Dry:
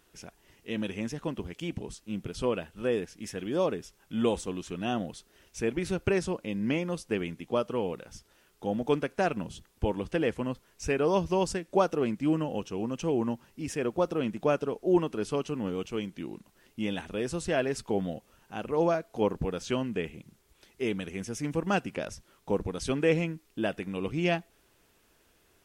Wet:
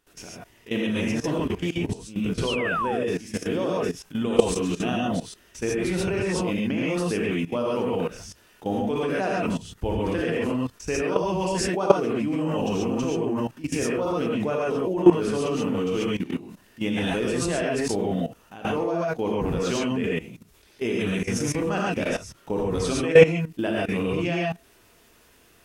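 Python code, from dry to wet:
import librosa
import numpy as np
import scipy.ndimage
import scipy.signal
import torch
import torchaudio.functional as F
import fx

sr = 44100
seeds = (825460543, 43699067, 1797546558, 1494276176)

y = fx.rev_gated(x, sr, seeds[0], gate_ms=160, shape='rising', drr_db=-6.0)
y = fx.spec_paint(y, sr, seeds[1], shape='fall', start_s=2.47, length_s=0.58, low_hz=530.0, high_hz=3300.0, level_db=-28.0)
y = fx.level_steps(y, sr, step_db=16)
y = F.gain(torch.from_numpy(y), 7.0).numpy()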